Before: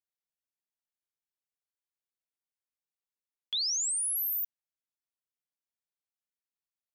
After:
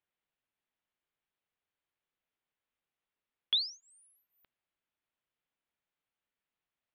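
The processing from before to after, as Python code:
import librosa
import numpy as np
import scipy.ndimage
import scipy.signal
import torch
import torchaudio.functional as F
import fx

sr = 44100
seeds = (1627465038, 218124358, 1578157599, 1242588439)

y = scipy.signal.sosfilt(scipy.signal.cheby2(4, 40, 6500.0, 'lowpass', fs=sr, output='sos'), x)
y = y * librosa.db_to_amplitude(8.0)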